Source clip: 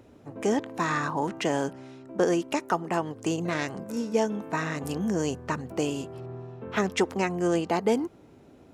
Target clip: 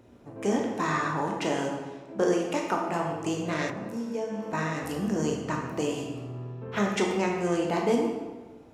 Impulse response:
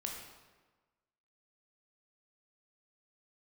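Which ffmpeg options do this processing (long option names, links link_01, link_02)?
-filter_complex "[1:a]atrim=start_sample=2205[link_01];[0:a][link_01]afir=irnorm=-1:irlink=0,asettb=1/sr,asplit=3[link_02][link_03][link_04];[link_02]atrim=end=3.704[link_05];[link_03]atrim=start=3.7:end=4.53,asetpts=PTS-STARTPTS,afade=type=in:duration=0.004:curve=qsin,afade=type=out:start_time=0.826:duration=0.004:curve=qsin,acrossover=split=630|1400[link_06][link_07][link_08];[link_06]acompressor=threshold=-32dB:ratio=4[link_09];[link_07]acompressor=threshold=-39dB:ratio=4[link_10];[link_08]acompressor=threshold=-52dB:ratio=4[link_11];[link_09][link_10][link_11]amix=inputs=3:normalize=0[link_12];[link_04]atrim=start=4.526[link_13];[link_05][link_12]acrossfade=duration=0.004:curve1=hsin:curve2=qsin[link_14];[link_14][link_13]acrossfade=duration=0.004:curve1=qsin:curve2=hsin"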